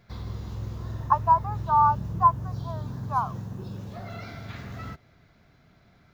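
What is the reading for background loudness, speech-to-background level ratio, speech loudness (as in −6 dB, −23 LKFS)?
−35.5 LKFS, 11.5 dB, −24.0 LKFS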